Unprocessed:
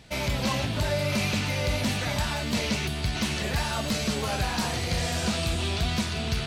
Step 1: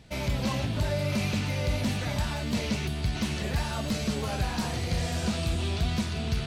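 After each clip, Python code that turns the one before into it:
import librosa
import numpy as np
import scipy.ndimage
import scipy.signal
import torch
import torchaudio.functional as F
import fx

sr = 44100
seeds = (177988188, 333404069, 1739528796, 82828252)

y = fx.low_shelf(x, sr, hz=480.0, db=6.0)
y = F.gain(torch.from_numpy(y), -5.5).numpy()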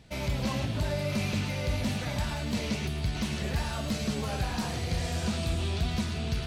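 y = x + 10.0 ** (-11.0 / 20.0) * np.pad(x, (int(107 * sr / 1000.0), 0))[:len(x)]
y = F.gain(torch.from_numpy(y), -2.0).numpy()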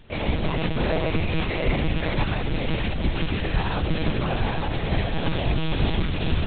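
y = fx.echo_diffused(x, sr, ms=529, feedback_pct=46, wet_db=-7.5)
y = fx.lpc_monotone(y, sr, seeds[0], pitch_hz=160.0, order=10)
y = F.gain(torch.from_numpy(y), 6.5).numpy()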